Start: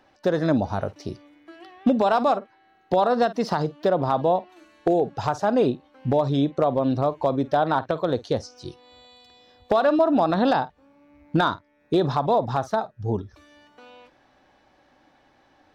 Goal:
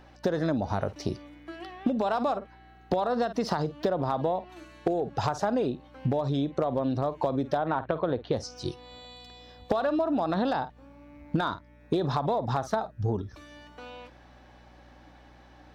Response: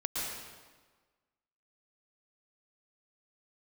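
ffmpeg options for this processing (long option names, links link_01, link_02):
-filter_complex "[0:a]asettb=1/sr,asplit=3[link_01][link_02][link_03];[link_01]atrim=end=7.584[link_04];[link_02]atrim=start=7.58:end=8.33,asetpts=PTS-STARTPTS,afade=type=in:duration=0.004:curve=qsin,afade=type=out:start_time=0.746:duration=0.004:curve=qsin,lowpass=frequency=3100:width=0.5412,lowpass=frequency=3100:width=1.3066[link_05];[link_03]atrim=start=8.326[link_06];[link_04][link_05]acrossfade=duration=0.004:curve1=hsin:curve2=qsin[link_07];[link_07][link_06]acrossfade=duration=0.004:curve1=qsin:curve2=hsin,asplit=2[link_08][link_09];[link_09]alimiter=limit=-21dB:level=0:latency=1,volume=-1.5dB[link_10];[link_08][link_10]amix=inputs=2:normalize=0,acompressor=threshold=-22dB:ratio=12,aeval=exprs='val(0)+0.00224*(sin(2*PI*60*n/s)+sin(2*PI*2*60*n/s)/2+sin(2*PI*3*60*n/s)/3+sin(2*PI*4*60*n/s)/4+sin(2*PI*5*60*n/s)/5)':channel_layout=same,aeval=exprs='0.237*(cos(1*acos(clip(val(0)/0.237,-1,1)))-cos(1*PI/2))+0.0133*(cos(3*acos(clip(val(0)/0.237,-1,1)))-cos(3*PI/2))':channel_layout=same"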